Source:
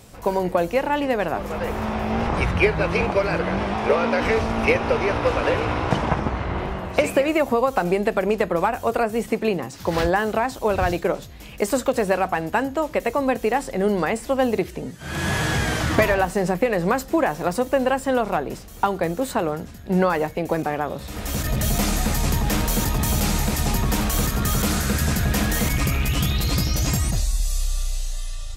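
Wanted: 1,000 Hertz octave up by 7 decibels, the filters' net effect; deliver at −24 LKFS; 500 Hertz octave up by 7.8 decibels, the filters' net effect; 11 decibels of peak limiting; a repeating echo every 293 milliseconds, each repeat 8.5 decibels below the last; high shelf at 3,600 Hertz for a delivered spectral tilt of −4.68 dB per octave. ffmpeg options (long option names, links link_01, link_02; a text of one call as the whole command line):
ffmpeg -i in.wav -af "equalizer=frequency=500:width_type=o:gain=7.5,equalizer=frequency=1000:width_type=o:gain=6,highshelf=frequency=3600:gain=4,alimiter=limit=-10dB:level=0:latency=1,aecho=1:1:293|586|879|1172:0.376|0.143|0.0543|0.0206,volume=-4dB" out.wav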